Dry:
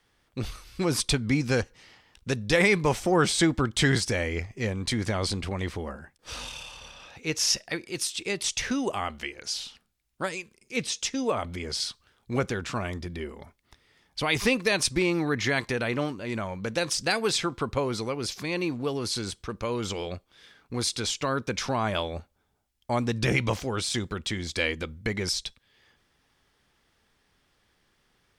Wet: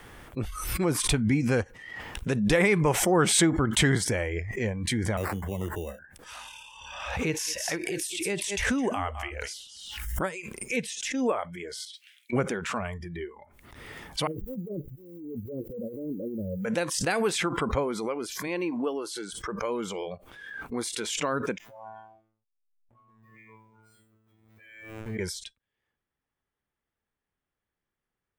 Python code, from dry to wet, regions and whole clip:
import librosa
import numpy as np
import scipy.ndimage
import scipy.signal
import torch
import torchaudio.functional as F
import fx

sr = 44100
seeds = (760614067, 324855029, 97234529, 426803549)

y = fx.chain(x, sr, fx.band_shelf(hz=1300.0, db=-8.5, octaves=1.7),
    fx.sample_hold(seeds[0], rate_hz=3200.0, jitter_pct=0),
    fx.band_squash(depth_pct=40), at=(5.17, 5.99))
y = fx.chain(y, sr, fx.peak_eq(hz=68.0, db=8.5, octaves=1.2),
    fx.echo_single(ms=209, db=-14.0),
    fx.pre_swell(db_per_s=42.0), at=(6.8, 10.3))
y = fx.chain(y, sr, fx.steep_highpass(hz=2100.0, slope=48),
    fx.high_shelf(hz=4100.0, db=-10.5), at=(11.85, 12.33))
y = fx.chain(y, sr, fx.cheby1_lowpass(hz=540.0, order=6),
    fx.over_compress(threshold_db=-34.0, ratio=-0.5),
    fx.mod_noise(seeds[1], snr_db=26), at=(14.27, 16.65))
y = fx.chain(y, sr, fx.highpass(hz=220.0, slope=12),
    fx.high_shelf(hz=10000.0, db=-4.5), at=(18.47, 19.33))
y = fx.chain(y, sr, fx.comb_fb(f0_hz=110.0, decay_s=1.5, harmonics='all', damping=0.0, mix_pct=100),
    fx.backlash(play_db=-44.0), at=(21.58, 25.19))
y = fx.noise_reduce_blind(y, sr, reduce_db=18)
y = fx.peak_eq(y, sr, hz=4700.0, db=-11.5, octaves=1.2)
y = fx.pre_swell(y, sr, db_per_s=44.0)